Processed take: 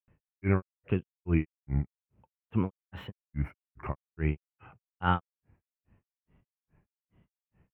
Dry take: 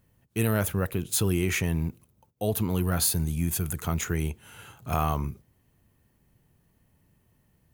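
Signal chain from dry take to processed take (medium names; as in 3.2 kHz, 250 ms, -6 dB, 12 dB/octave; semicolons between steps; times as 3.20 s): elliptic low-pass 2.7 kHz, stop band 40 dB; granulator 210 ms, grains 2.4 per s, pitch spread up and down by 3 st; trim +3 dB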